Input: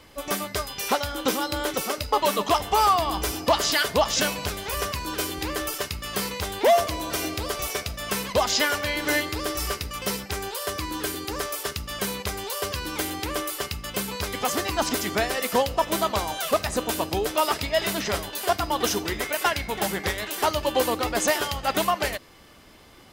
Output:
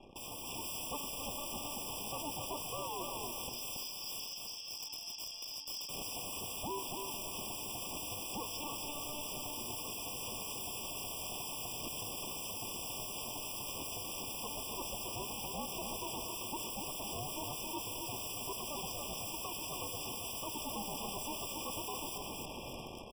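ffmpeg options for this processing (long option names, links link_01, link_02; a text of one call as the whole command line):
ffmpeg -i in.wav -filter_complex "[0:a]aeval=exprs='(tanh(31.6*val(0)+0.3)-tanh(0.3))/31.6':channel_layout=same,asettb=1/sr,asplit=3[link_01][link_02][link_03];[link_01]atrim=end=3.494[link_04];[link_02]atrim=start=3.49:end=5.89,asetpts=PTS-STARTPTS,afade=type=in:duration=0.004:curve=qsin,afade=type=out:start_time=2.396:duration=0.004:curve=qsin,bandpass=frequency=4900:width_type=q:width=8.2:csg=0[link_05];[link_03]atrim=start=5.886[link_06];[link_04][link_05]acrossfade=duration=0.004:curve1=hsin:curve2=qsin[link_07];[link_07][link_06]acrossfade=duration=0.004:curve1=qsin:curve2=hsin,aeval=exprs='(mod(119*val(0)+1,2)-1)/119':channel_layout=same,dynaudnorm=framelen=160:gausssize=9:maxgain=8.5dB,aecho=1:1:276|552|828:0.562|0.141|0.0351,alimiter=level_in=10.5dB:limit=-24dB:level=0:latency=1:release=309,volume=-10.5dB,aeval=exprs='val(0)*sin(2*PI*300*n/s)':channel_layout=same,anlmdn=0.00158,afftfilt=real='re*eq(mod(floor(b*sr/1024/1200),2),0)':imag='im*eq(mod(floor(b*sr/1024/1200),2),0)':win_size=1024:overlap=0.75,volume=6dB" out.wav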